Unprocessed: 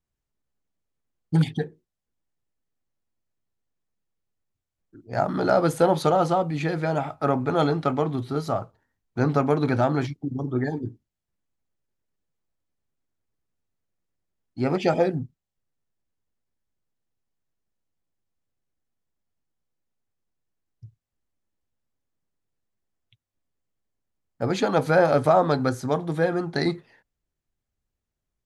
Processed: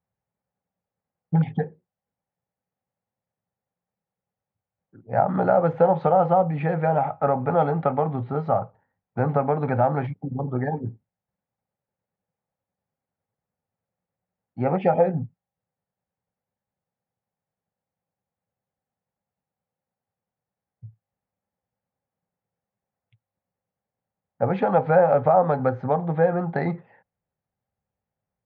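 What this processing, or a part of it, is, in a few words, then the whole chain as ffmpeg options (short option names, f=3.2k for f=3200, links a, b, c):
bass amplifier: -af "acompressor=threshold=-21dB:ratio=3,highpass=86,equalizer=f=110:t=q:w=4:g=5,equalizer=f=180:t=q:w=4:g=7,equalizer=f=320:t=q:w=4:g=-9,equalizer=f=530:t=q:w=4:g=8,equalizer=f=800:t=q:w=4:g=10,lowpass=f=2.3k:w=0.5412,lowpass=f=2.3k:w=1.3066"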